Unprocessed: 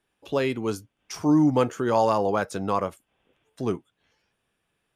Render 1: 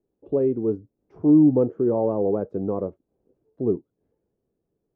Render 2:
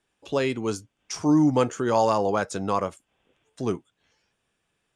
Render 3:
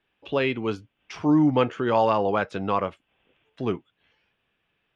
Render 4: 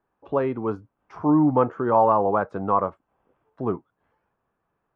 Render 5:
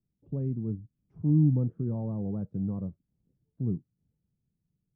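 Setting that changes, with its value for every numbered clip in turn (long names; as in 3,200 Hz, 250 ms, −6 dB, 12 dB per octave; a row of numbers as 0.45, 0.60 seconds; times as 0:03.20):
low-pass with resonance, frequency: 410, 7,700, 2,900, 1,100, 160 Hertz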